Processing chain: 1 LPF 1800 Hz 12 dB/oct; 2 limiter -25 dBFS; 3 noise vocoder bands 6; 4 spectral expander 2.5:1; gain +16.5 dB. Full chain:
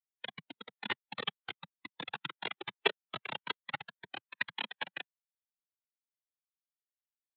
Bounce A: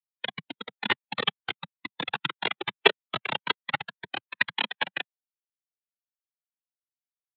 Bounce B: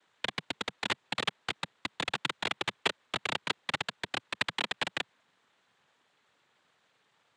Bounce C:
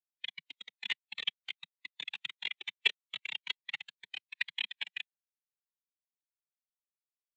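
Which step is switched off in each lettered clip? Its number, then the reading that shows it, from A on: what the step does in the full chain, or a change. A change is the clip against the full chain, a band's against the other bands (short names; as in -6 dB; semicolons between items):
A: 2, mean gain reduction 10.0 dB; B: 4, 500 Hz band -3.5 dB; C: 1, 4 kHz band +19.0 dB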